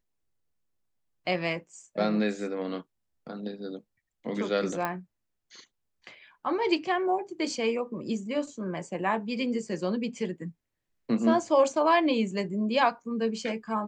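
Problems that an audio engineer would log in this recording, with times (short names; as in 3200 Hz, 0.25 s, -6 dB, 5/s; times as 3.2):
4.85 pop -16 dBFS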